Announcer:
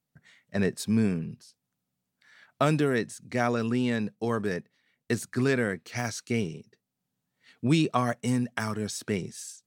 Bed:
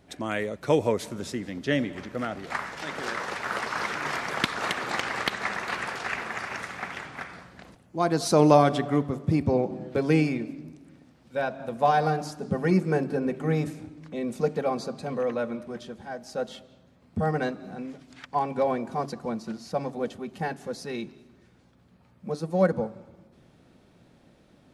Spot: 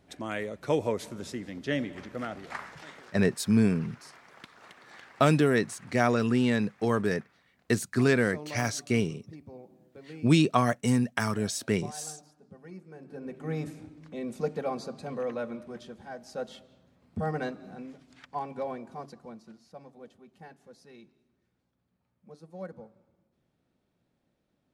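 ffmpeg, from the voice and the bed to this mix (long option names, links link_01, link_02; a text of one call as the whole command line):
ffmpeg -i stem1.wav -i stem2.wav -filter_complex "[0:a]adelay=2600,volume=2dB[link_01];[1:a]volume=14dB,afade=type=out:start_time=2.32:duration=0.8:silence=0.112202,afade=type=in:start_time=12.97:duration=0.8:silence=0.11885,afade=type=out:start_time=17.54:duration=2.17:silence=0.211349[link_02];[link_01][link_02]amix=inputs=2:normalize=0" out.wav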